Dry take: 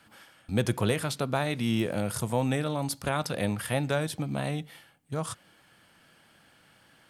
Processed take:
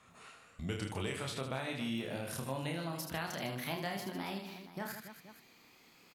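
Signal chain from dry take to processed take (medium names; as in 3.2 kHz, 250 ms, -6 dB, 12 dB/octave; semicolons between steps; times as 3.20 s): gliding tape speed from 79% -> 152%; on a send: reverse bouncing-ball echo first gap 30 ms, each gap 1.6×, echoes 5; on the sum: compression 2:1, threshold -38 dBFS, peak gain reduction 10.5 dB; dynamic bell 2.6 kHz, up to +5 dB, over -54 dBFS, Q 0.87; trim -4.5 dB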